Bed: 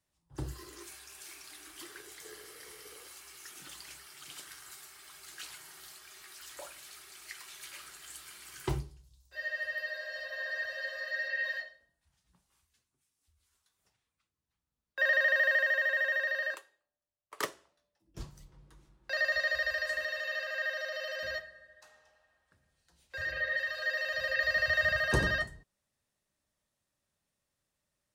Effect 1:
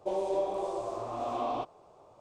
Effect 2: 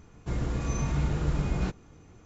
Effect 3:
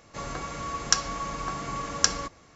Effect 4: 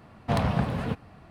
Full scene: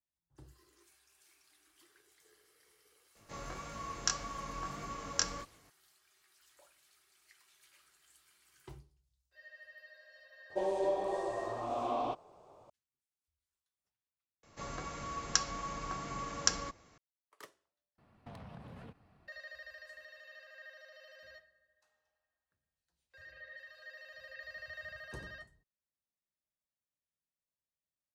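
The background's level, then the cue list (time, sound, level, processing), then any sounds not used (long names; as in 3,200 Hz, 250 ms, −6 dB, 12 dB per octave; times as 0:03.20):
bed −18.5 dB
0:03.15: mix in 3 −6.5 dB + chorus effect 1.7 Hz, delay 18 ms, depth 5.4 ms
0:10.50: mix in 1 −2 dB
0:14.43: overwrite with 3 −7.5 dB
0:17.98: overwrite with 4 −16 dB + downward compressor, threshold −30 dBFS
not used: 2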